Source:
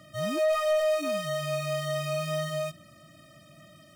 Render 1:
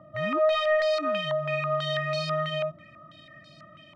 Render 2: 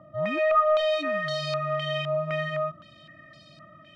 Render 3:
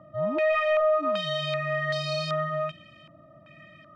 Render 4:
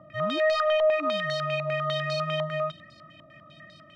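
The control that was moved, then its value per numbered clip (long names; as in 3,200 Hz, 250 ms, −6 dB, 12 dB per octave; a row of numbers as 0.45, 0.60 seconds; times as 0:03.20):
low-pass on a step sequencer, speed: 6.1, 3.9, 2.6, 10 Hertz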